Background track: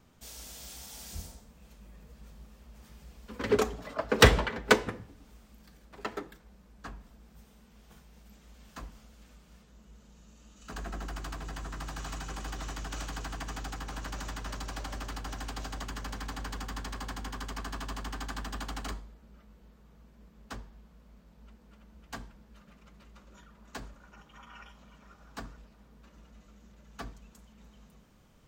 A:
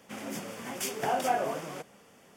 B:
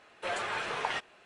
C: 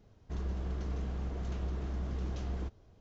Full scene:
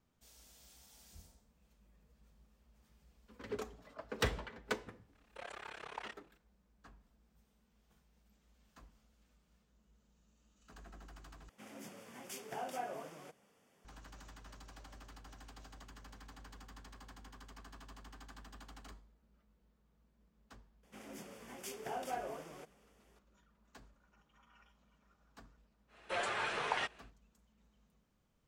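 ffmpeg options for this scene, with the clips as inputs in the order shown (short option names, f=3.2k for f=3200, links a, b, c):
-filter_complex "[2:a]asplit=2[a][b];[1:a]asplit=2[c][d];[0:a]volume=-16dB[e];[a]tremolo=f=34:d=0.974[f];[d]equalizer=f=400:t=o:w=0.29:g=4.5[g];[e]asplit=2[h][i];[h]atrim=end=11.494[j];[c]atrim=end=2.36,asetpts=PTS-STARTPTS,volume=-13.5dB[k];[i]atrim=start=13.846[l];[f]atrim=end=1.25,asetpts=PTS-STARTPTS,volume=-11dB,afade=t=in:d=0.004:c=hsin,afade=t=out:st=1.246:d=0.004:c=hsin,adelay=226233S[m];[g]atrim=end=2.36,asetpts=PTS-STARTPTS,volume=-13dB,afade=t=in:d=0.004:c=hsin,afade=t=out:st=2.356:d=0.004:c=hsin,adelay=20830[n];[b]atrim=end=1.25,asetpts=PTS-STARTPTS,volume=-3dB,afade=t=in:d=0.1,afade=t=out:st=1.15:d=0.1,adelay=25870[o];[j][k]acrossfade=d=0.004:c1=hsin:c2=hsin[p];[p][l]acrossfade=d=0.004:c1=hsin:c2=hsin[q];[q][m][n][o]amix=inputs=4:normalize=0"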